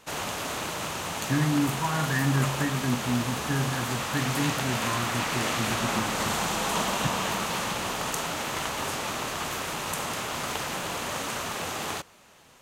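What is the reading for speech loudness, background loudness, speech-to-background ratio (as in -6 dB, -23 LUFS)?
-30.0 LUFS, -29.5 LUFS, -0.5 dB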